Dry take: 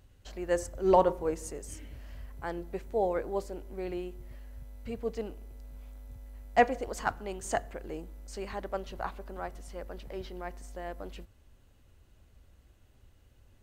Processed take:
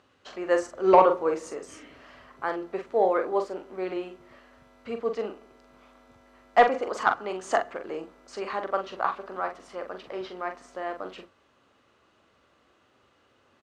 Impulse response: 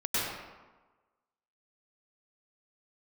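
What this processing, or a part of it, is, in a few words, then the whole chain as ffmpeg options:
intercom: -filter_complex "[0:a]highpass=300,lowpass=4600,equalizer=frequency=1200:width_type=o:width=0.38:gain=9.5,asoftclip=type=tanh:threshold=-11.5dB,asplit=2[link_01][link_02];[link_02]adelay=43,volume=-7dB[link_03];[link_01][link_03]amix=inputs=2:normalize=0,volume=6dB"

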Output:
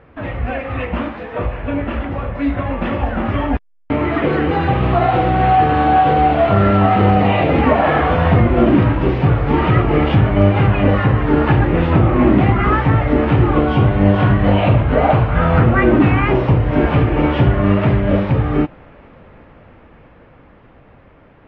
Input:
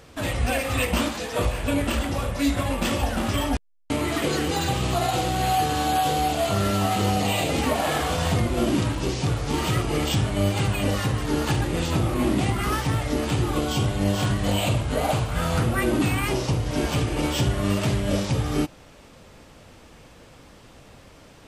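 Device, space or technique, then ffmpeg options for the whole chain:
action camera in a waterproof case: -af "lowpass=frequency=2200:width=0.5412,lowpass=frequency=2200:width=1.3066,dynaudnorm=framelen=580:gausssize=13:maxgain=9dB,volume=2.5dB" -ar 44100 -c:a aac -b:a 48k

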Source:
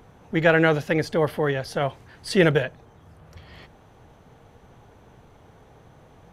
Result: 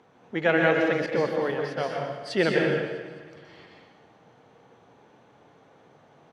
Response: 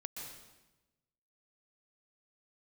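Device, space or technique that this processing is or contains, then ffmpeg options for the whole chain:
supermarket ceiling speaker: -filter_complex "[0:a]highpass=220,lowpass=5800[link_01];[1:a]atrim=start_sample=2205[link_02];[link_01][link_02]afir=irnorm=-1:irlink=0,asettb=1/sr,asplit=3[link_03][link_04][link_05];[link_03]atrim=end=1.064[link_06];[link_04]atrim=start=1.06:end=1.78,asetpts=PTS-STARTPTS,afade=type=in:duration=0.004:curve=qsin,afade=type=out:start_time=0.716:duration=0.004:curve=qsin,agate=range=-33dB:threshold=-24dB:ratio=3:detection=peak[link_07];[link_05]atrim=start=1.776[link_08];[link_06][link_07]acrossfade=duration=0.004:curve1=hsin:curve2=qsin[link_09];[link_09][link_08]acrossfade=duration=0.004:curve1=qsin:curve2=hsin,aecho=1:1:217|434|651|868|1085:0.126|0.0705|0.0395|0.0221|0.0124"

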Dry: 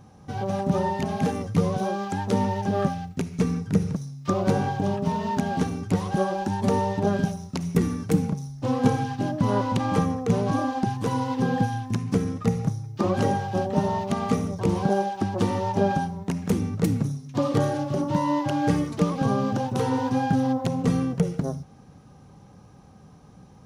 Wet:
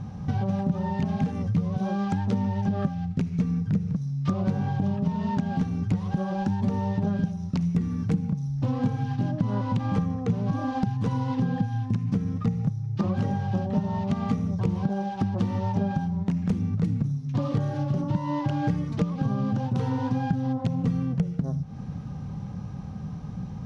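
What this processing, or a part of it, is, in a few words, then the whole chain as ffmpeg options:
jukebox: -af "lowpass=5100,lowshelf=frequency=250:width_type=q:width=1.5:gain=8,acompressor=threshold=-31dB:ratio=5,volume=6.5dB"

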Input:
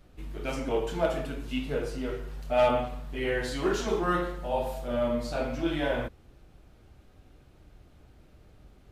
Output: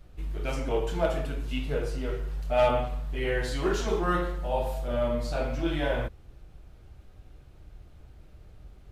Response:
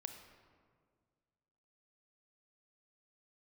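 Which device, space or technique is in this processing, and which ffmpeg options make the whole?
low shelf boost with a cut just above: -af "lowshelf=frequency=110:gain=8,equalizer=frequency=250:width_type=o:width=0.57:gain=-4.5"

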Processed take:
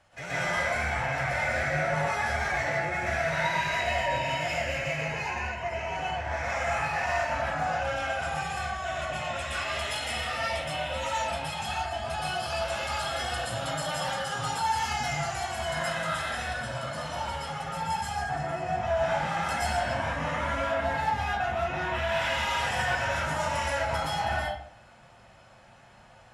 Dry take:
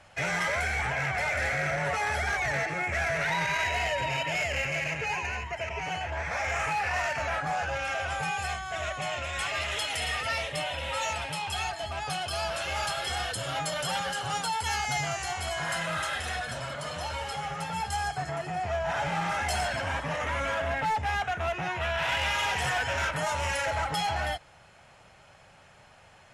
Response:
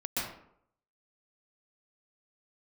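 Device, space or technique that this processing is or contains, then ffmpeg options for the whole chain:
bathroom: -filter_complex "[1:a]atrim=start_sample=2205[link_01];[0:a][link_01]afir=irnorm=-1:irlink=0,equalizer=frequency=2400:width=5.4:gain=-4,volume=-5dB"

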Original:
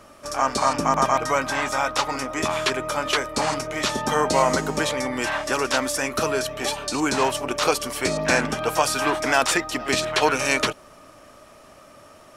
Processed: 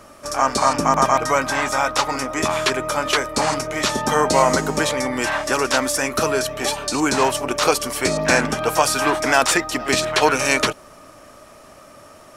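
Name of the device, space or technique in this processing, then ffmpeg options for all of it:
exciter from parts: -filter_complex "[0:a]asplit=2[link_01][link_02];[link_02]highpass=frequency=2800:width=0.5412,highpass=frequency=2800:width=1.3066,asoftclip=type=tanh:threshold=-21dB,volume=-12dB[link_03];[link_01][link_03]amix=inputs=2:normalize=0,volume=3.5dB"

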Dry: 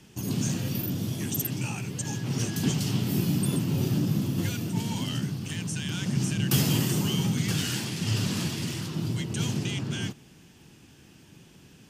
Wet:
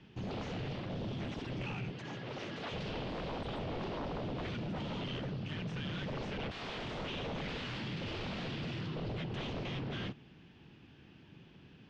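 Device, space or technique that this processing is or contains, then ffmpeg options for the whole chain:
synthesiser wavefolder: -filter_complex "[0:a]aeval=exprs='0.0335*(abs(mod(val(0)/0.0335+3,4)-2)-1)':channel_layout=same,lowpass=frequency=3700:width=0.5412,lowpass=frequency=3700:width=1.3066,asettb=1/sr,asplit=3[link_01][link_02][link_03];[link_01]atrim=end=1.914[link_04];[link_02]atrim=start=1.91:end=2.72,asetpts=PTS-STARTPTS,afade=type=in:duration=0.004:curve=qsin,afade=type=out:start_time=0.806:duration=0.004:curve=qsin,highpass=frequency=250:poles=1[link_05];[link_03]atrim=start=2.716[link_06];[link_04][link_05]acrossfade=duration=0.004:curve1=hsin:curve2=qsin[link_07];[link_07][link_06]acrossfade=duration=0.004:curve1=qsin:curve2=hsin,volume=-4dB"

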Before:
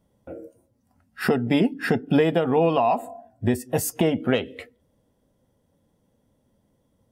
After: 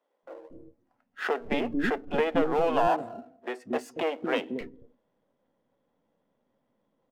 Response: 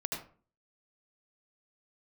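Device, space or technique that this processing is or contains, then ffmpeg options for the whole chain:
crystal radio: -filter_complex "[0:a]highpass=270,lowpass=2600,aeval=exprs='if(lt(val(0),0),0.447*val(0),val(0))':channel_layout=same,asettb=1/sr,asplit=3[link_01][link_02][link_03];[link_01]atrim=end=2.644[link_04];[link_02]atrim=start=2.64:end=4.38,asetpts=PTS-STARTPTS,afade=type=in:duration=0.004:curve=qsin,afade=type=out:start_time=1.736:duration=0.004:curve=qsin,highpass=220[link_05];[link_03]atrim=start=4.376[link_06];[link_04][link_05]acrossfade=duration=0.004:curve1=hsin:curve2=qsin[link_07];[link_07][link_06]acrossfade=duration=0.004:curve1=qsin:curve2=hsin,highshelf=frequency=9100:gain=5,acrossover=split=360[link_08][link_09];[link_08]adelay=230[link_10];[link_10][link_09]amix=inputs=2:normalize=0"

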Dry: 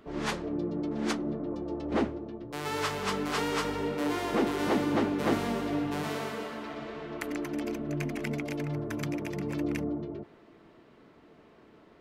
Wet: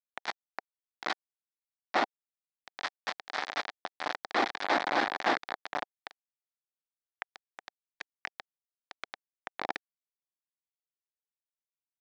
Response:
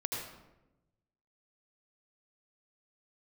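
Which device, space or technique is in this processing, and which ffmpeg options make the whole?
hand-held game console: -af "acrusher=bits=3:mix=0:aa=0.000001,highpass=430,equalizer=frequency=440:width_type=q:width=4:gain=-8,equalizer=frequency=760:width_type=q:width=4:gain=6,equalizer=frequency=1800:width_type=q:width=4:gain=4,equalizer=frequency=2800:width_type=q:width=4:gain=-7,lowpass=frequency=4400:width=0.5412,lowpass=frequency=4400:width=1.3066"

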